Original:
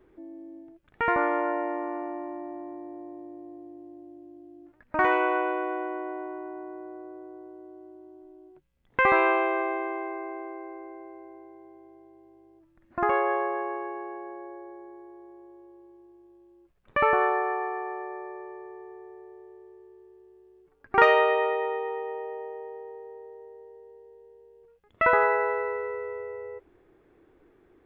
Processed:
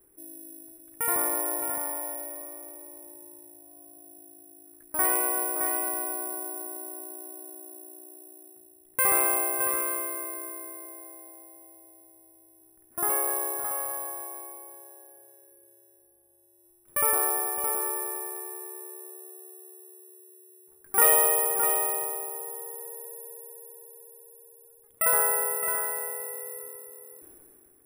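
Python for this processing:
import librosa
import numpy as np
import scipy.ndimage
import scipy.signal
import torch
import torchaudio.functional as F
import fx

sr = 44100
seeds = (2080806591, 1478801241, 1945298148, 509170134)

y = x + 10.0 ** (-7.0 / 20.0) * np.pad(x, (int(616 * sr / 1000.0), 0))[:len(x)]
y = (np.kron(scipy.signal.resample_poly(y, 1, 4), np.eye(4)[0]) * 4)[:len(y)]
y = fx.sustainer(y, sr, db_per_s=20.0)
y = y * librosa.db_to_amplitude(-8.5)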